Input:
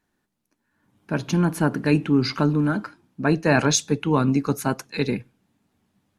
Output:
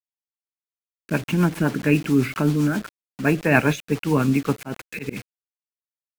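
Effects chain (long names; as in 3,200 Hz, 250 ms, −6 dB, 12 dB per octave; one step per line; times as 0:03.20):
high shelf with overshoot 3,500 Hz −11 dB, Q 3
bit reduction 6 bits
rotating-speaker cabinet horn 7.5 Hz
0:04.55–0:05.17: volume swells 120 ms
level +2 dB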